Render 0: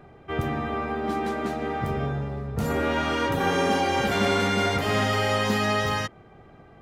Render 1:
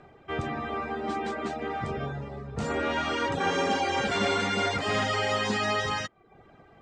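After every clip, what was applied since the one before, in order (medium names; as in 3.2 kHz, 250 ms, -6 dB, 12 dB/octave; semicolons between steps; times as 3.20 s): reverb removal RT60 0.57 s; elliptic low-pass 8.2 kHz, stop band 50 dB; bass shelf 260 Hz -5.5 dB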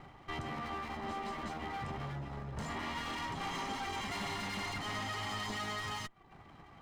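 comb filter that takes the minimum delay 0.97 ms; compression 2:1, threshold -41 dBFS, peak gain reduction 9.5 dB; saturation -34 dBFS, distortion -15 dB; trim +1 dB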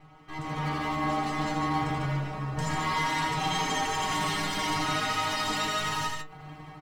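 level rider gain up to 11 dB; inharmonic resonator 150 Hz, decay 0.25 s, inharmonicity 0.002; on a send: multi-tap echo 80/148 ms -5/-5 dB; on the sum: trim +9 dB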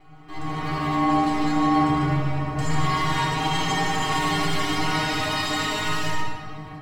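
simulated room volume 3900 m³, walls mixed, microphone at 3.3 m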